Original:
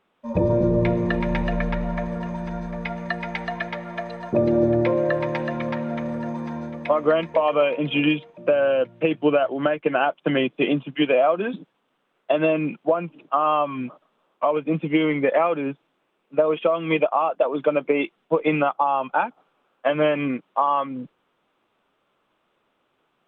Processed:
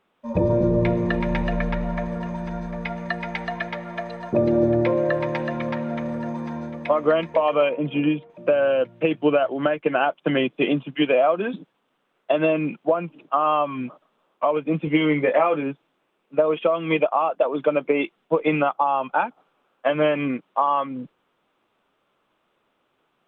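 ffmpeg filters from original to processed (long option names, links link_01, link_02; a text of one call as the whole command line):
ffmpeg -i in.wav -filter_complex "[0:a]asettb=1/sr,asplit=3[link_01][link_02][link_03];[link_01]atrim=end=7.694[link_04];[link_02]atrim=start=7.69:end=8.3,asetpts=PTS-STARTPTS,afade=type=in:duration=0.004:curve=qsin,afade=type=out:start_time=0.606:duration=0.004:curve=qsin,lowpass=frequency=1000:poles=1[link_05];[link_03]atrim=start=8.296[link_06];[link_04][link_05]acrossfade=duration=0.004:curve1=hsin:curve2=qsin[link_07];[link_07][link_06]acrossfade=duration=0.004:curve1=qsin:curve2=hsin,asettb=1/sr,asplit=3[link_08][link_09][link_10];[link_08]atrim=end=14.854[link_11];[link_09]atrim=start=14.85:end=15.63,asetpts=PTS-STARTPTS,afade=type=in:duration=0.004:curve=qsin,afade=type=out:start_time=0.776:duration=0.004:curve=qsin,asplit=2[link_12][link_13];[link_13]adelay=20,volume=-6dB[link_14];[link_12][link_14]amix=inputs=2:normalize=0,atrim=end_sample=34398[link_15];[link_10]atrim=start=15.626[link_16];[link_11][link_15]acrossfade=duration=0.004:curve1=hsin:curve2=qsin[link_17];[link_17][link_16]acrossfade=duration=0.004:curve1=qsin:curve2=hsin" out.wav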